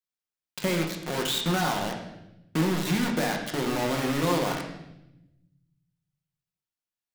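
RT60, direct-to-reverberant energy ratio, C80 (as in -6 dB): 0.85 s, 1.0 dB, 8.0 dB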